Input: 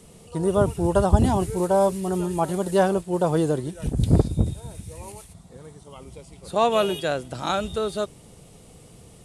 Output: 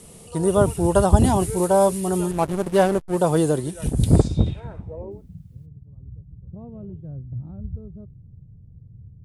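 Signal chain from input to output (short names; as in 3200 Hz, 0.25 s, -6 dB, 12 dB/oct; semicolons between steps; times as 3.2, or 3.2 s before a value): 2.31–3.17 backlash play -23.5 dBFS; low-pass sweep 11000 Hz -> 110 Hz, 4.12–5.47; 5.1–5.65 added noise white -80 dBFS; gain +2.5 dB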